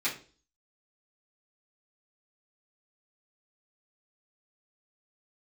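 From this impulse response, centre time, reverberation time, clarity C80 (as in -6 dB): 21 ms, 0.40 s, 15.0 dB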